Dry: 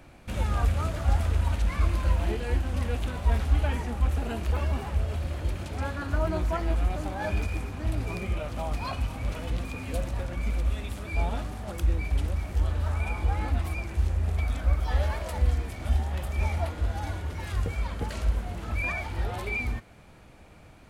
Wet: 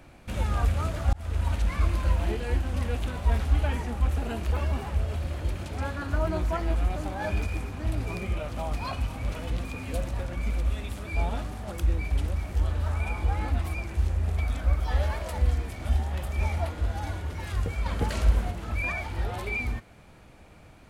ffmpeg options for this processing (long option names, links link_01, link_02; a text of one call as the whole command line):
ffmpeg -i in.wav -filter_complex "[0:a]asplit=4[link_01][link_02][link_03][link_04];[link_01]atrim=end=1.13,asetpts=PTS-STARTPTS,afade=type=out:start_time=1.126:duration=0.004:curve=hsin[link_05];[link_02]atrim=start=1.13:end=17.862,asetpts=PTS-STARTPTS,afade=type=in:duration=0.45:curve=qsin[link_06];[link_03]atrim=start=17.858:end=18.512,asetpts=PTS-STARTPTS,volume=4.5dB[link_07];[link_04]atrim=start=18.508[link_08];[link_05][link_06]concat=n=2:v=0:a=1[link_09];[link_09][link_07]acrossfade=duration=0.004:curve1=hsin:curve2=hsin[link_10];[link_10][link_08]acrossfade=duration=0.004:curve1=hsin:curve2=hsin" out.wav